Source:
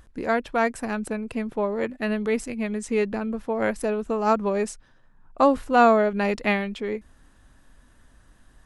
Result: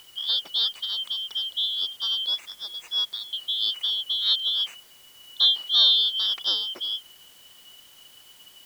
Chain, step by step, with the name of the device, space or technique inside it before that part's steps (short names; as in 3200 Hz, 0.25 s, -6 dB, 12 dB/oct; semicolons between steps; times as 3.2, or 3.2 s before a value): 2.26–3.33 steep high-pass 370 Hz 36 dB/oct; split-band scrambled radio (four-band scrambler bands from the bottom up 3412; BPF 390–3200 Hz; white noise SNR 27 dB); gain +2 dB